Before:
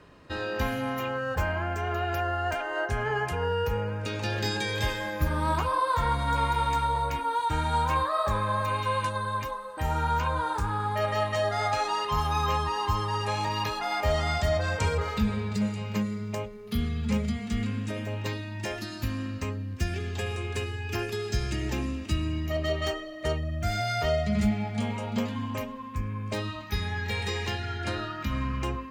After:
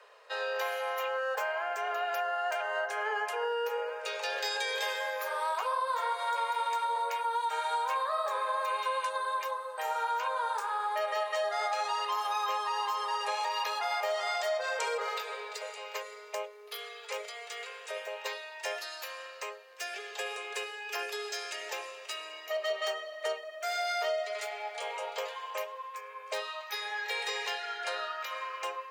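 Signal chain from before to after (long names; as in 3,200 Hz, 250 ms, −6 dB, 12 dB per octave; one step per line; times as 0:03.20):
Butterworth high-pass 440 Hz 72 dB per octave
downward compressor, threshold −28 dBFS, peak gain reduction 6.5 dB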